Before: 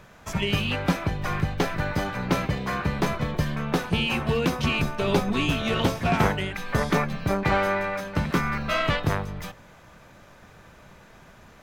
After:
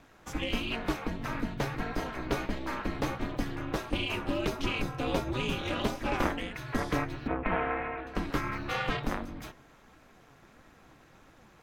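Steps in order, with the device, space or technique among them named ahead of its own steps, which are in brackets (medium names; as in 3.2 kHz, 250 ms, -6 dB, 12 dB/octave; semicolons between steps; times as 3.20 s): 7.27–8.07 s: steep low-pass 2.9 kHz 36 dB/octave; alien voice (ring modulator 130 Hz; flange 1.5 Hz, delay 2.9 ms, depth 4.5 ms, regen +72%)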